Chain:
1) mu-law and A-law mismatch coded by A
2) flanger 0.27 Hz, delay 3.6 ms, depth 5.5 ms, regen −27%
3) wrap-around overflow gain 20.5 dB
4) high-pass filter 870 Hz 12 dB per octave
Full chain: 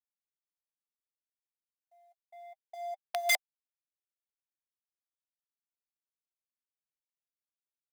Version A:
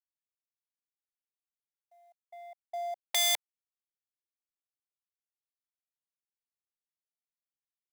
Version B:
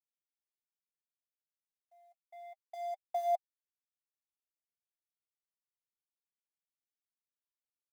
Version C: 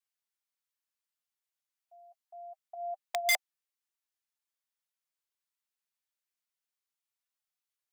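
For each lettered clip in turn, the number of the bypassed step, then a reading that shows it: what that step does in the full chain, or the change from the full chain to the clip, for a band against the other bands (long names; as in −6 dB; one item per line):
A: 2, 4 kHz band +9.0 dB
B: 3, change in crest factor −6.5 dB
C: 1, distortion level −27 dB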